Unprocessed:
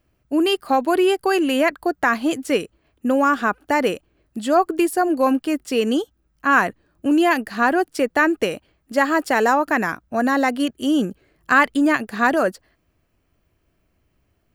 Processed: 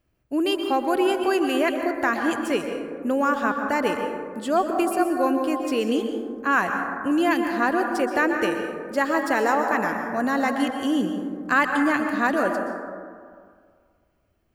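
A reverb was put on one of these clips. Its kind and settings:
dense smooth reverb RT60 2 s, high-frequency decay 0.3×, pre-delay 110 ms, DRR 4 dB
level −5 dB

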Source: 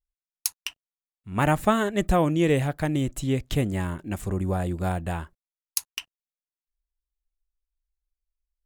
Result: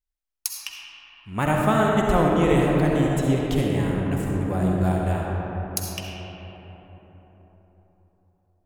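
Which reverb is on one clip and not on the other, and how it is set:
comb and all-pass reverb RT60 4.5 s, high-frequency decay 0.35×, pre-delay 25 ms, DRR −2.5 dB
level −1.5 dB

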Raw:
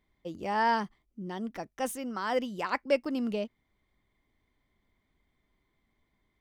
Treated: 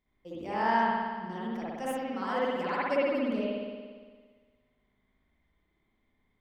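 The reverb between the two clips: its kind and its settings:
spring reverb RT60 1.6 s, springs 57 ms, chirp 40 ms, DRR −8.5 dB
level −8 dB

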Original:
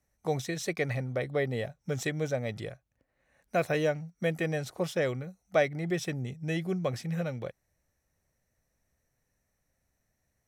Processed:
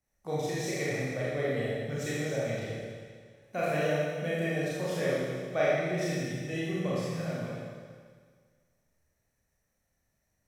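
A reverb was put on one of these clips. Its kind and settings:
four-comb reverb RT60 1.8 s, combs from 27 ms, DRR −8 dB
level −8 dB

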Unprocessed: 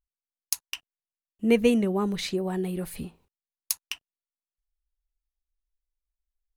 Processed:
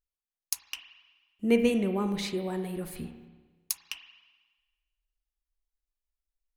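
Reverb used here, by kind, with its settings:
spring reverb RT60 1.3 s, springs 30/47 ms, chirp 50 ms, DRR 7 dB
level −3.5 dB

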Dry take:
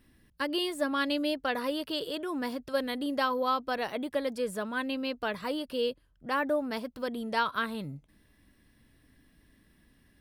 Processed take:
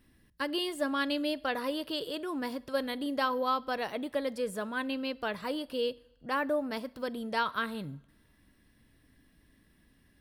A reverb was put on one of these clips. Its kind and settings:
coupled-rooms reverb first 0.65 s, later 2.3 s, from −20 dB, DRR 19 dB
level −1.5 dB

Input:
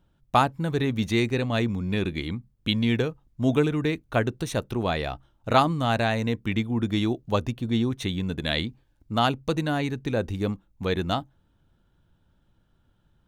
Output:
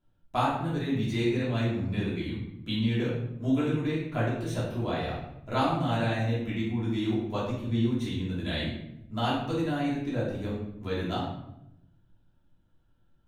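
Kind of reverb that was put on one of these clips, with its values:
rectangular room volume 230 cubic metres, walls mixed, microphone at 3 metres
level −15 dB

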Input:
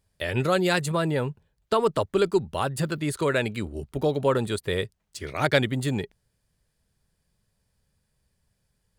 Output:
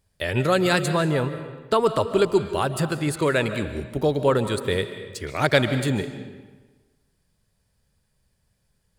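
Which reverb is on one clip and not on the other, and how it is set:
comb and all-pass reverb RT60 1.3 s, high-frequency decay 0.8×, pre-delay 105 ms, DRR 10 dB
level +2.5 dB

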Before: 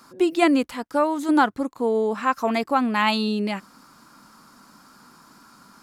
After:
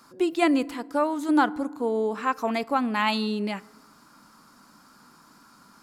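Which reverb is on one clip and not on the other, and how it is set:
feedback delay network reverb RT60 1.2 s, low-frequency decay 1.25×, high-frequency decay 0.45×, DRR 19.5 dB
level −3.5 dB

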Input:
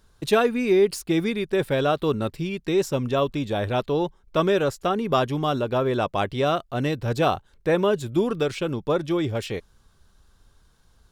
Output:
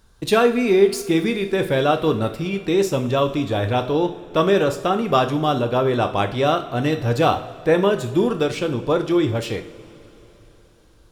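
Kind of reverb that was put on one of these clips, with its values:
coupled-rooms reverb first 0.51 s, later 4 s, from −18 dB, DRR 6 dB
level +3 dB

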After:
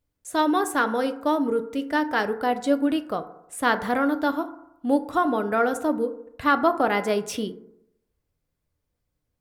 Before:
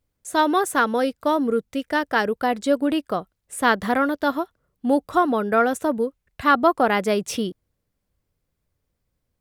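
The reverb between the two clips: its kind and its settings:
feedback delay network reverb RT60 0.81 s, low-frequency decay 0.9×, high-frequency decay 0.35×, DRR 8.5 dB
level −3.5 dB

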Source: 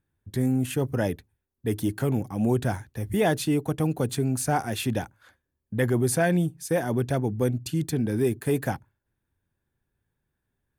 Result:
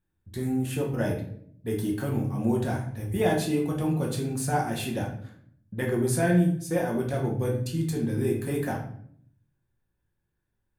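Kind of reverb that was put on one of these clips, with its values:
rectangular room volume 97 cubic metres, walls mixed, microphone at 0.95 metres
level −6 dB

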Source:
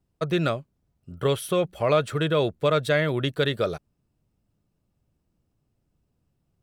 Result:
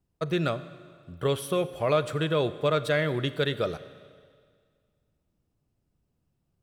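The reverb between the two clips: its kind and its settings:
four-comb reverb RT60 1.9 s, combs from 32 ms, DRR 14 dB
level −3 dB

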